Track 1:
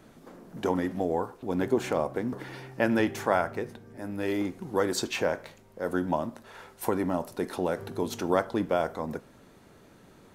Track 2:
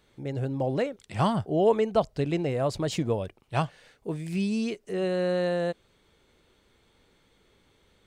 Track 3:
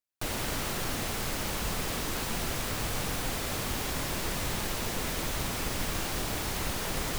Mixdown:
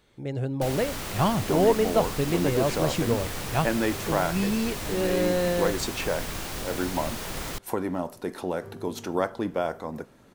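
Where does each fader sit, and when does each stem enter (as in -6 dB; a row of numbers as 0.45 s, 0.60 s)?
-1.0 dB, +1.0 dB, -1.5 dB; 0.85 s, 0.00 s, 0.40 s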